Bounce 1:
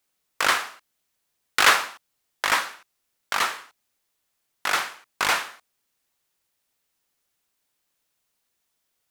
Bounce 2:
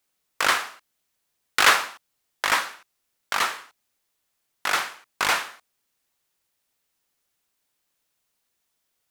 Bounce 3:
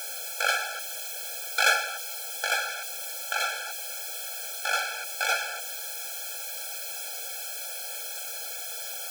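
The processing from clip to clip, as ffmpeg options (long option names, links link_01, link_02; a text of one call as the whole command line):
ffmpeg -i in.wav -af anull out.wav
ffmpeg -i in.wav -af "aeval=exprs='val(0)+0.5*0.0668*sgn(val(0))':channel_layout=same,afftfilt=real='re*eq(mod(floor(b*sr/1024/440),2),1)':imag='im*eq(mod(floor(b*sr/1024/440),2),1)':win_size=1024:overlap=0.75,volume=-3dB" out.wav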